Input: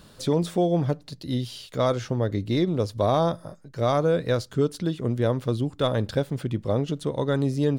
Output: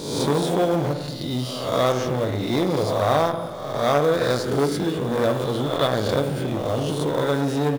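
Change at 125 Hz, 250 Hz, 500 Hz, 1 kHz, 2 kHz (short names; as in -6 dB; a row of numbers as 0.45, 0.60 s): -0.5, +1.5, +3.5, +6.0, +7.5 dB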